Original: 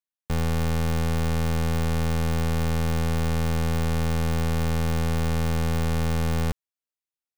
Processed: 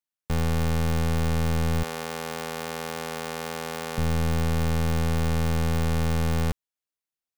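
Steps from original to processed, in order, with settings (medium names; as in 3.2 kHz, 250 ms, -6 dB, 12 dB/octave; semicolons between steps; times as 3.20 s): 1.83–3.98 s: high-pass 370 Hz 12 dB/octave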